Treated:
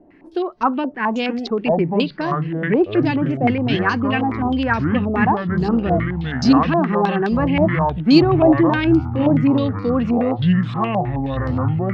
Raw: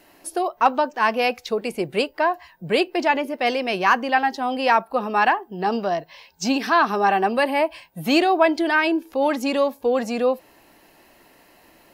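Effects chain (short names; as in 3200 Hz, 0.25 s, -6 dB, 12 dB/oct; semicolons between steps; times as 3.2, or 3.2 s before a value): resonant low shelf 440 Hz +12 dB, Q 1.5; echoes that change speed 0.747 s, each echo -7 st, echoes 3; stepped low-pass 9.5 Hz 690–4700 Hz; gain -6 dB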